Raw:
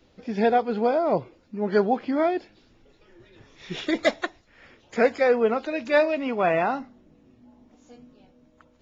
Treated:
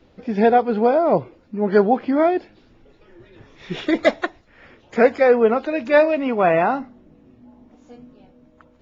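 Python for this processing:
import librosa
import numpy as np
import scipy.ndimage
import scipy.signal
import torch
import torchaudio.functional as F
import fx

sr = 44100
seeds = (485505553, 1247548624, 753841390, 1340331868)

y = fx.high_shelf(x, sr, hz=3900.0, db=-11.5)
y = y * librosa.db_to_amplitude(6.0)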